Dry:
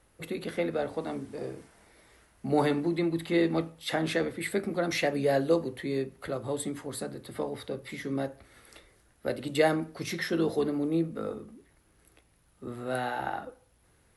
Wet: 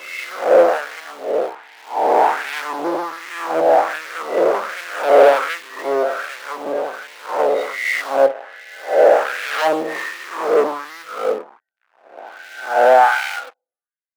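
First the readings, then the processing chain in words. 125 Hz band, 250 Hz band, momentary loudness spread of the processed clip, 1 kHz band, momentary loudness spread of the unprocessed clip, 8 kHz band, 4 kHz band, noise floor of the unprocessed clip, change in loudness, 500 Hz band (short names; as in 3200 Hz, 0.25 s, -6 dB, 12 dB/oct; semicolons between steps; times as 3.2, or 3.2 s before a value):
under -10 dB, -1.0 dB, 16 LU, +19.5 dB, 12 LU, +6.0 dB, +8.0 dB, -65 dBFS, +13.0 dB, +14.5 dB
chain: spectral swells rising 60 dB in 2.47 s; HPF 140 Hz 24 dB/oct; treble ducked by the level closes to 650 Hz, closed at -22 dBFS; loudest bins only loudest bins 32; in parallel at -9 dB: sample gate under -33.5 dBFS; on the sum: sample leveller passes 5; LFO high-pass sine 1.3 Hz 560–1900 Hz; three-band expander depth 70%; gain -3.5 dB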